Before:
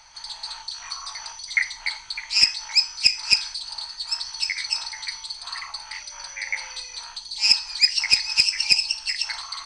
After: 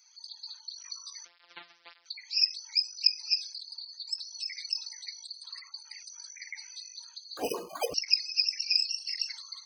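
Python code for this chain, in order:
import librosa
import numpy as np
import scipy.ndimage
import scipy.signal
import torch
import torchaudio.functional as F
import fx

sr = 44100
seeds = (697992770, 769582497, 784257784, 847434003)

y = fx.sample_sort(x, sr, block=256, at=(1.25, 2.06))
y = fx.highpass(y, sr, hz=550.0, slope=6)
y = fx.spec_gate(y, sr, threshold_db=-15, keep='strong')
y = np.diff(y, prepend=0.0)
y = fx.resample_bad(y, sr, factor=8, down='none', up='hold', at=(7.37, 7.94))
y = fx.doubler(y, sr, ms=35.0, db=-3.0, at=(8.66, 9.33))
y = fx.flanger_cancel(y, sr, hz=1.8, depth_ms=2.4)
y = y * 10.0 ** (-1.5 / 20.0)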